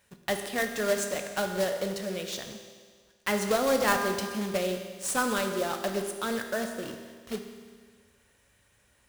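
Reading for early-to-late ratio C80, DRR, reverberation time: 7.5 dB, 5.0 dB, 1.7 s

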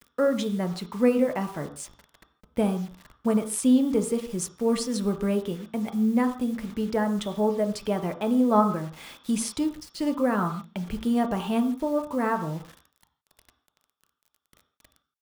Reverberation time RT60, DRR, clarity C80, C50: not exponential, 5.0 dB, 13.0 dB, 10.0 dB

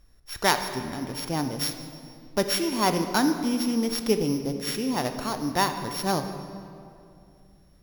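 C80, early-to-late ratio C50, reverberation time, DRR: 9.0 dB, 8.0 dB, 2.5 s, 7.0 dB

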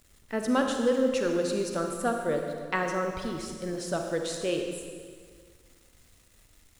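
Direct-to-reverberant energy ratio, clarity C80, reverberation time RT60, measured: 3.0 dB, 5.0 dB, 1.9 s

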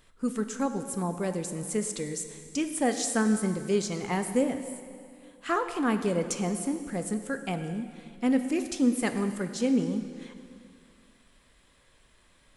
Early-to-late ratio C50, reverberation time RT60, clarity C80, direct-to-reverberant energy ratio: 9.0 dB, 2.3 s, 10.0 dB, 7.5 dB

